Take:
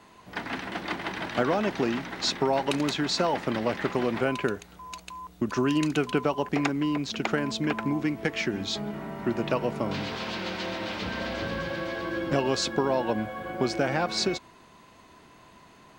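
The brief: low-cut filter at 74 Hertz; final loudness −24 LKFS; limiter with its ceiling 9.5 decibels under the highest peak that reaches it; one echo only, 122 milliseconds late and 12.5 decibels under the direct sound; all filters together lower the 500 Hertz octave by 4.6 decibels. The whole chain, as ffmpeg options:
ffmpeg -i in.wav -af "highpass=74,equalizer=frequency=500:width_type=o:gain=-6,alimiter=limit=-20.5dB:level=0:latency=1,aecho=1:1:122:0.237,volume=7.5dB" out.wav

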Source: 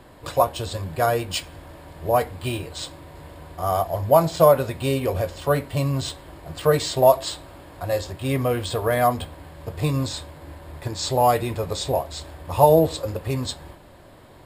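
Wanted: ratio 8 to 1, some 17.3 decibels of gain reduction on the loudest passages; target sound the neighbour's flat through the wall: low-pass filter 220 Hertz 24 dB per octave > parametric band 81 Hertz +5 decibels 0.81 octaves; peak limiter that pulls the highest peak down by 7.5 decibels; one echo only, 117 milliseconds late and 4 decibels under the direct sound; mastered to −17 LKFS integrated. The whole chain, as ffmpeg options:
ffmpeg -i in.wav -af "acompressor=threshold=-28dB:ratio=8,alimiter=level_in=1dB:limit=-24dB:level=0:latency=1,volume=-1dB,lowpass=frequency=220:width=0.5412,lowpass=frequency=220:width=1.3066,equalizer=frequency=81:width_type=o:width=0.81:gain=5,aecho=1:1:117:0.631,volume=20dB" out.wav

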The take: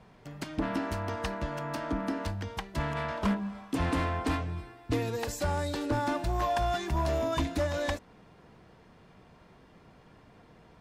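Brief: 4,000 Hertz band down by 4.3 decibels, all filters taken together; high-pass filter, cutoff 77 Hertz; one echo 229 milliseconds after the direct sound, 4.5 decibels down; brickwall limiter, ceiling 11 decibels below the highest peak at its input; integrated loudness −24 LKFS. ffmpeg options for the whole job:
ffmpeg -i in.wav -af "highpass=77,equalizer=frequency=4000:width_type=o:gain=-5.5,alimiter=level_in=4.5dB:limit=-24dB:level=0:latency=1,volume=-4.5dB,aecho=1:1:229:0.596,volume=12.5dB" out.wav

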